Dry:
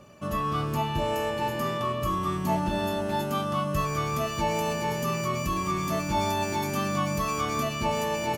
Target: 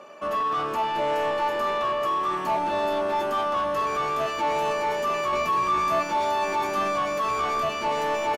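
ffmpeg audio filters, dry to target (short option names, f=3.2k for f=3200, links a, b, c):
-filter_complex "[0:a]highpass=380,asplit=2[a][b];[b]highpass=f=720:p=1,volume=20dB,asoftclip=type=tanh:threshold=-15.5dB[c];[a][c]amix=inputs=2:normalize=0,lowpass=f=1.1k:p=1,volume=-6dB,asettb=1/sr,asplit=3[d][e][f];[d]atrim=end=5.314[g];[e]atrim=start=5.31:end=6.03,asetpts=PTS-STARTPTS,afade=t=in:d=0.004:c=qsin,afade=t=out:st=0.716:d=0.004:c=qsin,asplit=2[h][i];[i]adelay=17,volume=-5.5dB[j];[h][j]amix=inputs=2:normalize=0,atrim=end_sample=31752[k];[f]atrim=start=6.026[l];[g][k]acrossfade=d=0.004:c1=hsin:c2=qsin[m];[m][l]acrossfade=d=0.004:c1=qsin:c2=hsin,aecho=1:1:886:0.224"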